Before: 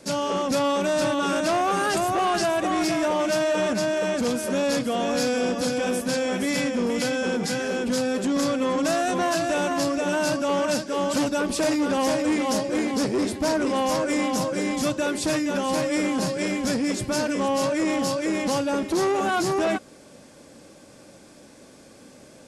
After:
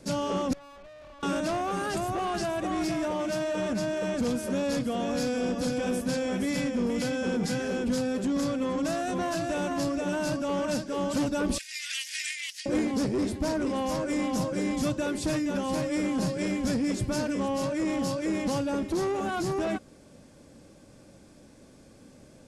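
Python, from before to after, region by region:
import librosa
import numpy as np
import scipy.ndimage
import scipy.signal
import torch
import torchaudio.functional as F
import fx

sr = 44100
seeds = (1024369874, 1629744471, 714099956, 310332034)

y = fx.chain(x, sr, fx.vowel_filter(vowel='a'),
    fx.tube_stage(drive_db=43.0, bias=0.7), at=(0.53, 1.23))
y = fx.chain(y, sr, fx.steep_highpass(hz=1900.0, slope=48),
    fx.over_compress(threshold_db=-37.0, ratio=-0.5), at=(11.58, 12.66))
y = fx.low_shelf(y, sr, hz=96.0, db=8.5)
y = fx.rider(y, sr, range_db=10, speed_s=0.5)
y = fx.low_shelf(y, sr, hz=290.0, db=7.0)
y = y * 10.0 ** (-7.5 / 20.0)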